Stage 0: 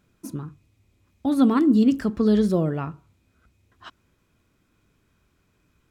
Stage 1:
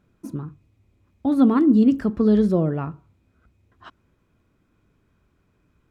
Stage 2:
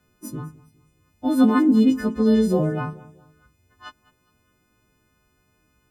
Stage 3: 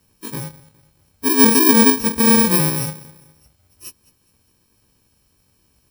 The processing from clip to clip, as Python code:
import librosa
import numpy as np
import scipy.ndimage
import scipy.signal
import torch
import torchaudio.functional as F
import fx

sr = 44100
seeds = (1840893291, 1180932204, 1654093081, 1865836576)

y1 = fx.high_shelf(x, sr, hz=2400.0, db=-11.0)
y1 = y1 * 10.0 ** (2.0 / 20.0)
y2 = fx.freq_snap(y1, sr, grid_st=3)
y2 = fx.echo_feedback(y2, sr, ms=207, feedback_pct=39, wet_db=-20.5)
y3 = fx.bit_reversed(y2, sr, seeds[0], block=64)
y3 = y3 * 10.0 ** (4.0 / 20.0)